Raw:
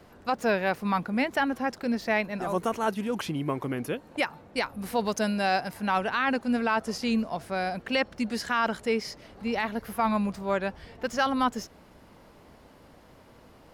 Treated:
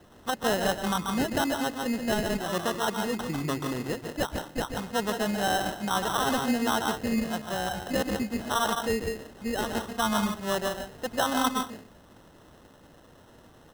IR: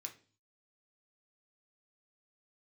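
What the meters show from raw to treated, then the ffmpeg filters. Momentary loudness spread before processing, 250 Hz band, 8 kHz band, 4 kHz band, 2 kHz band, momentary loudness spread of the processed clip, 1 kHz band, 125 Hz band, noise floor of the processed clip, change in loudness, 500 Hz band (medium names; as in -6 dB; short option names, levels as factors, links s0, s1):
6 LU, -0.5 dB, +8.5 dB, +3.5 dB, -2.5 dB, 7 LU, -0.5 dB, +1.0 dB, -55 dBFS, -0.5 dB, -0.5 dB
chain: -filter_complex "[0:a]aresample=11025,aresample=44100,asplit=2[s0][s1];[1:a]atrim=start_sample=2205,adelay=140[s2];[s1][s2]afir=irnorm=-1:irlink=0,volume=1.26[s3];[s0][s3]amix=inputs=2:normalize=0,acrusher=samples=19:mix=1:aa=0.000001,volume=0.841"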